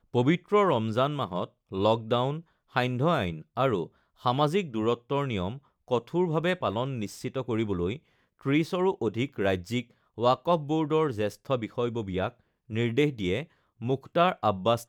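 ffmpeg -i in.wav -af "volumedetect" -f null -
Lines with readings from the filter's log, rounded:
mean_volume: -28.0 dB
max_volume: -9.8 dB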